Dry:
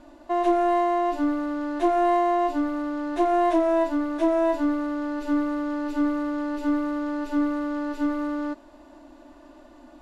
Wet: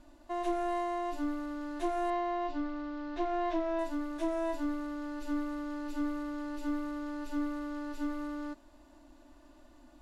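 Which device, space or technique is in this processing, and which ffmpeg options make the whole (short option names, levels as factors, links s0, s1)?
smiley-face EQ: -filter_complex "[0:a]lowshelf=f=140:g=8,equalizer=f=480:t=o:w=2.1:g=-4,highshelf=f=5000:g=8,asettb=1/sr,asplit=3[s0][s1][s2];[s0]atrim=end=2.104[s3];[s1]atrim=start=2.1:end=3.79,asetpts=PTS-STARTPTS,afade=t=in:d=0.004:c=qsin,afade=t=out:st=1.686:d=0.004:c=qsin,lowpass=f=5100:w=0.5412,lowpass=f=5100:w=1.3066[s4];[s2]atrim=start=3.786[s5];[s3][s4]acrossfade=d=0.004:c1=hsin:c2=qsin[s6];[s6][s5]acrossfade=d=0.004:c1=qsin:c2=hsin,volume=0.355"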